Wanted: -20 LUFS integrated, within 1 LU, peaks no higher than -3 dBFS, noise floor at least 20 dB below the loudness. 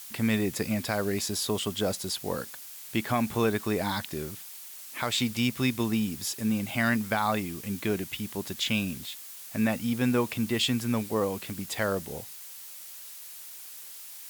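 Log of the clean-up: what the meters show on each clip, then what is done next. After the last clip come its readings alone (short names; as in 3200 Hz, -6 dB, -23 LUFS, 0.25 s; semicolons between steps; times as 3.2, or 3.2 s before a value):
noise floor -44 dBFS; noise floor target -50 dBFS; loudness -29.5 LUFS; peak -13.5 dBFS; loudness target -20.0 LUFS
-> noise print and reduce 6 dB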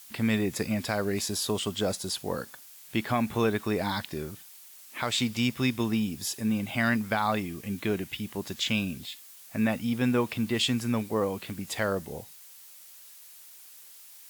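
noise floor -50 dBFS; loudness -29.5 LUFS; peak -14.0 dBFS; loudness target -20.0 LUFS
-> gain +9.5 dB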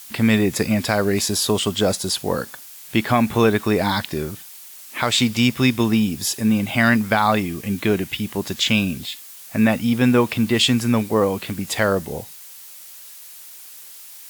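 loudness -20.0 LUFS; peak -4.5 dBFS; noise floor -41 dBFS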